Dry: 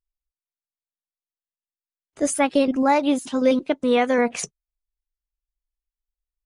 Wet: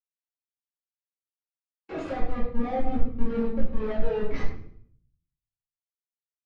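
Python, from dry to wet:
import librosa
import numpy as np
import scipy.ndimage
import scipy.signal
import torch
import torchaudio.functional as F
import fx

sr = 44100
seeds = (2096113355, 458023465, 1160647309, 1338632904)

y = fx.doppler_pass(x, sr, speed_mps=44, closest_m=2.7, pass_at_s=2.04)
y = fx.recorder_agc(y, sr, target_db=-17.5, rise_db_per_s=13.0, max_gain_db=30)
y = fx.weighting(y, sr, curve='A')
y = fx.schmitt(y, sr, flips_db=-37.5)
y = fx.air_absorb(y, sr, metres=170.0)
y = fx.echo_feedback(y, sr, ms=106, feedback_pct=42, wet_db=-12.5)
y = fx.room_shoebox(y, sr, seeds[0], volume_m3=210.0, walls='mixed', distance_m=2.3)
y = fx.spectral_expand(y, sr, expansion=1.5)
y = y * 10.0 ** (7.5 / 20.0)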